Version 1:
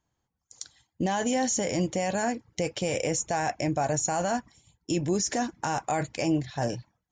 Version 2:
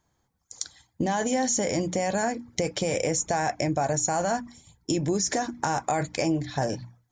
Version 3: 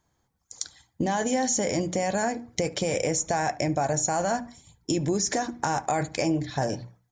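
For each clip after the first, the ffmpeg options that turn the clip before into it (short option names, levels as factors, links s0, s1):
-af "acompressor=threshold=0.0251:ratio=2.5,equalizer=f=2800:w=7.3:g=-9.5,bandreject=f=60:t=h:w=6,bandreject=f=120:t=h:w=6,bandreject=f=180:t=h:w=6,bandreject=f=240:t=h:w=6,bandreject=f=300:t=h:w=6,volume=2.37"
-filter_complex "[0:a]asplit=2[s0][s1];[s1]adelay=72,lowpass=f=2200:p=1,volume=0.119,asplit=2[s2][s3];[s3]adelay=72,lowpass=f=2200:p=1,volume=0.33,asplit=2[s4][s5];[s5]adelay=72,lowpass=f=2200:p=1,volume=0.33[s6];[s0][s2][s4][s6]amix=inputs=4:normalize=0"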